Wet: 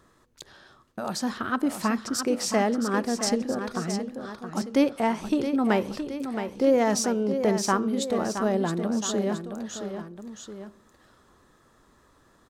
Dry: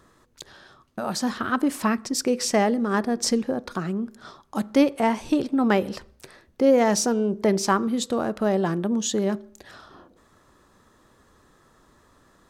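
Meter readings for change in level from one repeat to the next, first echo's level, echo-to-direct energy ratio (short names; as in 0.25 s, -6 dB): -5.0 dB, -8.5 dB, -7.5 dB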